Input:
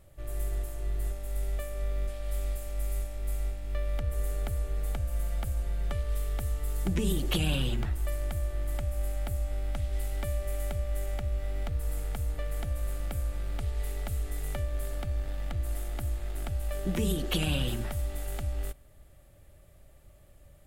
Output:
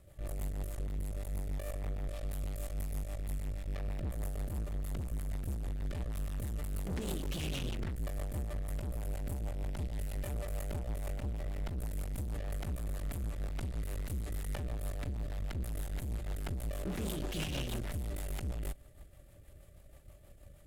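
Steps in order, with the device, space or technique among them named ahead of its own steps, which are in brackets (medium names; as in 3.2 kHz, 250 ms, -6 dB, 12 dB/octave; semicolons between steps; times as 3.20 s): overdriven rotary cabinet (valve stage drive 39 dB, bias 0.75; rotary cabinet horn 6.3 Hz); trim +6 dB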